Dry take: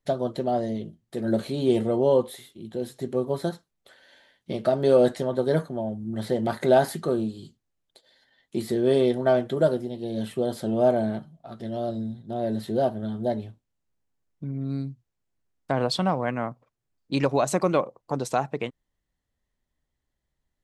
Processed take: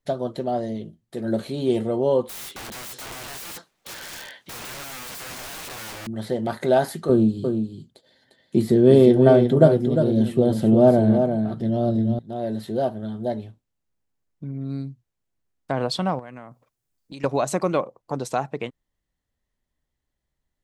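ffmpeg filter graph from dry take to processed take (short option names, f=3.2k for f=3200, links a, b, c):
-filter_complex "[0:a]asettb=1/sr,asplit=3[a][b][c];[a]atrim=end=2.294[d];[b]atrim=start=2.29:end=6.07,asetpts=PTS-STARTPTS,afade=t=in:d=0.004:c=qsin,afade=t=out:st=3.776:d=0.004:c=qsin,acrossover=split=220|3000[e][f][g];[f]acompressor=threshold=-31dB:ratio=4:attack=3.2:release=140:knee=2.83:detection=peak[h];[e][h][g]amix=inputs=3:normalize=0,asplit=2[i][j];[j]highpass=f=720:p=1,volume=28dB,asoftclip=type=tanh:threshold=-17dB[k];[i][k]amix=inputs=2:normalize=0,lowpass=f=3.9k:p=1,volume=-6dB,aeval=exprs='(mod(37.6*val(0)+1,2)-1)/37.6':c=same[l];[c]atrim=start=6.066[m];[d][l]acrossfade=d=0.004:c1=hsin:c2=qsin[n];[n][m]acrossfade=d=0.004:c1=qsin:c2=hsin,asettb=1/sr,asplit=3[o][p][q];[o]atrim=end=7.094[r];[p]atrim=start=7.09:end=12.19,asetpts=PTS-STARTPTS,afade=t=in:d=0.004:c=qsin,afade=t=out:st=5.096:d=0.004:c=qsin,highpass=54,equalizer=f=140:w=0.34:g=12,aecho=1:1:351:0.473,atrim=end_sample=224910[s];[q]atrim=start=12.186[t];[r][s]acrossfade=d=0.004:c1=hsin:c2=qsin[u];[u][t]acrossfade=d=0.004:c1=qsin:c2=hsin,asettb=1/sr,asplit=3[v][w][x];[v]atrim=end=16.194[y];[w]atrim=start=16.19:end=17.24,asetpts=PTS-STARTPTS,afade=t=in:d=0.004:c=qsin,afade=t=out:st=1.046:d=0.004:c=qsin,highshelf=f=5.4k:g=11,acompressor=threshold=-36dB:ratio=5:attack=3.2:release=140:knee=1:detection=peak[z];[x]atrim=start=17.236[aa];[y][z]acrossfade=d=0.004:c1=hsin:c2=qsin[ab];[ab][aa]acrossfade=d=0.004:c1=qsin:c2=hsin"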